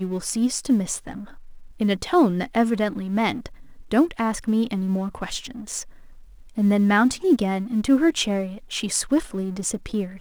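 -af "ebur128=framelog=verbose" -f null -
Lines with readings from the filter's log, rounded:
Integrated loudness:
  I:         -22.9 LUFS
  Threshold: -33.5 LUFS
Loudness range:
  LRA:         3.9 LU
  Threshold: -43.2 LUFS
  LRA low:   -25.4 LUFS
  LRA high:  -21.5 LUFS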